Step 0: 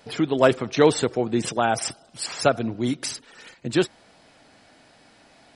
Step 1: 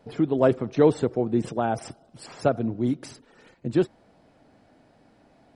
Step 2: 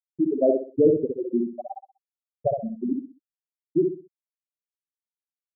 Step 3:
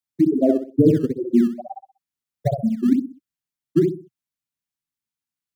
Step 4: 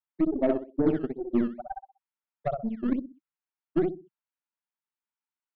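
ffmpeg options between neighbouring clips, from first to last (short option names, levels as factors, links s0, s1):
-af "tiltshelf=f=1200:g=8.5,volume=0.422"
-filter_complex "[0:a]afftfilt=real='re*gte(hypot(re,im),0.562)':imag='im*gte(hypot(re,im),0.562)':win_size=1024:overlap=0.75,asplit=2[s0][s1];[s1]adelay=63,lowpass=f=1900:p=1,volume=0.668,asplit=2[s2][s3];[s3]adelay=63,lowpass=f=1900:p=1,volume=0.32,asplit=2[s4][s5];[s5]adelay=63,lowpass=f=1900:p=1,volume=0.32,asplit=2[s6][s7];[s7]adelay=63,lowpass=f=1900:p=1,volume=0.32[s8];[s0][s2][s4][s6][s8]amix=inputs=5:normalize=0"
-filter_complex "[0:a]equalizer=f=125:t=o:w=1:g=9,equalizer=f=250:t=o:w=1:g=5,equalizer=f=500:t=o:w=1:g=-9,acrossover=split=150|260[s0][s1][s2];[s0]acrusher=samples=17:mix=1:aa=0.000001:lfo=1:lforange=27.2:lforate=2.2[s3];[s3][s1][s2]amix=inputs=3:normalize=0,volume=1.78"
-af "highpass=260,equalizer=f=280:t=q:w=4:g=-3,equalizer=f=480:t=q:w=4:g=-7,equalizer=f=920:t=q:w=4:g=9,equalizer=f=1400:t=q:w=4:g=5,lowpass=f=2900:w=0.5412,lowpass=f=2900:w=1.3066,aeval=exprs='0.376*(cos(1*acos(clip(val(0)/0.376,-1,1)))-cos(1*PI/2))+0.0266*(cos(3*acos(clip(val(0)/0.376,-1,1)))-cos(3*PI/2))+0.0211*(cos(6*acos(clip(val(0)/0.376,-1,1)))-cos(6*PI/2))':c=same,volume=0.708"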